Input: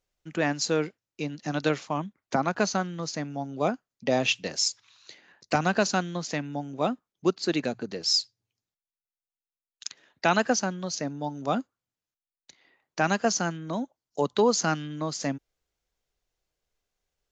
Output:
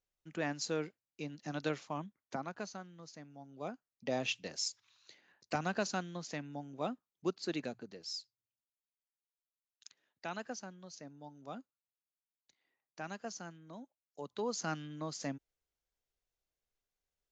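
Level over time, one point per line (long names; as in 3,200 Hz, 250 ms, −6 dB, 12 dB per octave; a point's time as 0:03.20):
0:02.04 −10.5 dB
0:02.78 −19.5 dB
0:03.39 −19.5 dB
0:04.08 −11 dB
0:07.63 −11 dB
0:08.17 −19 dB
0:14.22 −19 dB
0:14.78 −10 dB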